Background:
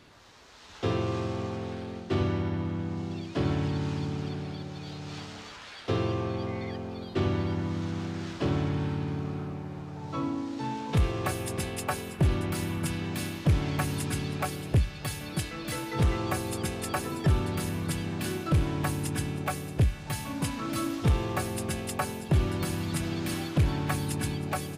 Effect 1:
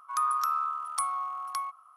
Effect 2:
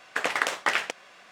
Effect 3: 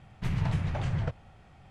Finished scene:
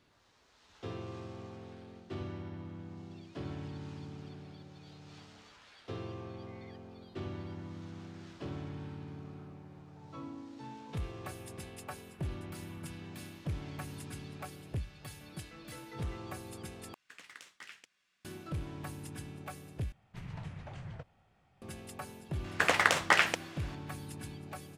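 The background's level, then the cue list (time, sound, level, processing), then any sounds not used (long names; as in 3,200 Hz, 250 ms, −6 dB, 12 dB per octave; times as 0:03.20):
background −13.5 dB
0:16.94: overwrite with 2 −6 dB + guitar amp tone stack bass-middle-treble 6-0-2
0:19.92: overwrite with 3 −12 dB + low-shelf EQ 93 Hz −8 dB
0:22.44: mix in 2
not used: 1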